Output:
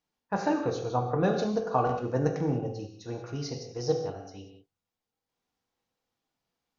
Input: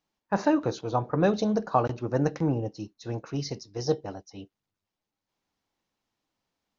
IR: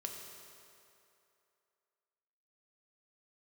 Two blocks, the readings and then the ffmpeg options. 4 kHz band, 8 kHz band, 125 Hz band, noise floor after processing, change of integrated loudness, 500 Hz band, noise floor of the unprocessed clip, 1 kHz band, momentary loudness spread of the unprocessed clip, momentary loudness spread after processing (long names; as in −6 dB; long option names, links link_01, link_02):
−2.0 dB, can't be measured, −1.5 dB, below −85 dBFS, −2.0 dB, −1.0 dB, below −85 dBFS, −1.0 dB, 14 LU, 13 LU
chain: -filter_complex "[1:a]atrim=start_sample=2205,afade=type=out:start_time=0.29:duration=0.01,atrim=end_sample=13230,asetrate=52920,aresample=44100[link_01];[0:a][link_01]afir=irnorm=-1:irlink=0,volume=1.5dB"